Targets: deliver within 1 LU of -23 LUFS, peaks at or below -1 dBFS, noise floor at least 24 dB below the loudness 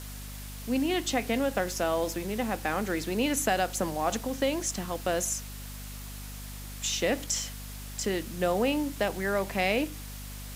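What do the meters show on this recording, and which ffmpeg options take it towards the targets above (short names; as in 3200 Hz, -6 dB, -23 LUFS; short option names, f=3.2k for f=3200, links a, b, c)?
hum 50 Hz; harmonics up to 250 Hz; hum level -39 dBFS; noise floor -41 dBFS; noise floor target -54 dBFS; loudness -29.5 LUFS; peak -12.0 dBFS; loudness target -23.0 LUFS
-> -af "bandreject=f=50:t=h:w=4,bandreject=f=100:t=h:w=4,bandreject=f=150:t=h:w=4,bandreject=f=200:t=h:w=4,bandreject=f=250:t=h:w=4"
-af "afftdn=nr=13:nf=-41"
-af "volume=6.5dB"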